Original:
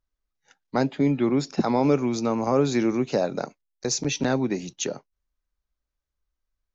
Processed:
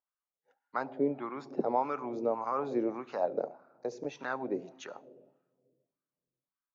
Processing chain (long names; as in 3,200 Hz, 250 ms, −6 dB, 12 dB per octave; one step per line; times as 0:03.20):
on a send at −19 dB: low-shelf EQ 430 Hz +6.5 dB + convolution reverb RT60 1.4 s, pre-delay 72 ms
on the sum: LFO wah 1.7 Hz 460–1,300 Hz, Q 2.8